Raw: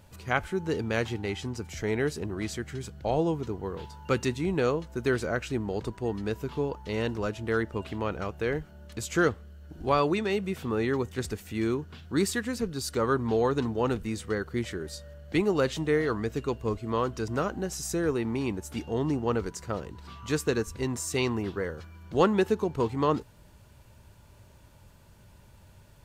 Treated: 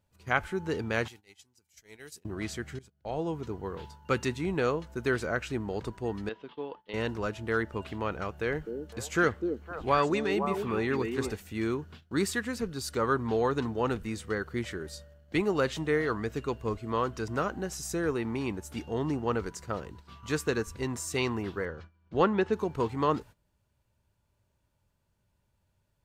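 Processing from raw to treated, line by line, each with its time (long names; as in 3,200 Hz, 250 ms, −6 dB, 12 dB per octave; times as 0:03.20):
0:01.08–0:02.25: first-order pre-emphasis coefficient 0.9
0:02.79–0:03.54: fade in, from −17 dB
0:06.29–0:06.94: loudspeaker in its box 360–3,500 Hz, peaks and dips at 390 Hz −5 dB, 620 Hz −5 dB, 940 Hz −4 dB, 1,400 Hz −6 dB, 2,300 Hz −5 dB, 3,300 Hz +5 dB
0:08.38–0:11.36: echo through a band-pass that steps 254 ms, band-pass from 310 Hz, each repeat 1.4 octaves, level −2 dB
0:21.65–0:22.53: high-frequency loss of the air 130 metres
whole clip: noise gate −44 dBFS, range −17 dB; dynamic equaliser 1,500 Hz, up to +4 dB, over −43 dBFS, Q 0.74; level −3 dB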